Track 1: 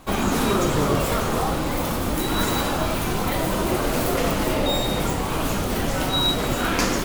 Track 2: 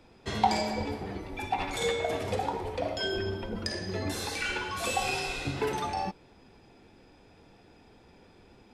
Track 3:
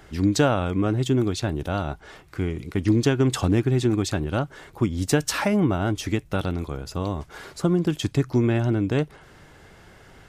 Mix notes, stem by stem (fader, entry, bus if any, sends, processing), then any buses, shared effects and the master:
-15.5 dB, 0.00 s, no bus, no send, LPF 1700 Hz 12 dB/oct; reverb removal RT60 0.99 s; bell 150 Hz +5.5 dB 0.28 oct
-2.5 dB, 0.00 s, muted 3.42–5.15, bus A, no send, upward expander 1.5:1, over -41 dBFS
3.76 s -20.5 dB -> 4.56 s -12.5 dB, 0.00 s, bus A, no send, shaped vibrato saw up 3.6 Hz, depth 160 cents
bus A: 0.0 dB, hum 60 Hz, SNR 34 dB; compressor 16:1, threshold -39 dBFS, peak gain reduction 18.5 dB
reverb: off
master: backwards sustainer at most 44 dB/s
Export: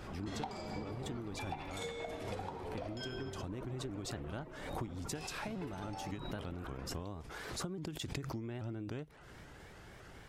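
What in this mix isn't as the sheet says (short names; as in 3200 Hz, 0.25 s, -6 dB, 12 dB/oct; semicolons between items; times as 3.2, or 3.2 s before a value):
stem 1 -15.5 dB -> -27.5 dB; stem 2 -2.5 dB -> +4.0 dB; stem 3 -20.5 dB -> -13.5 dB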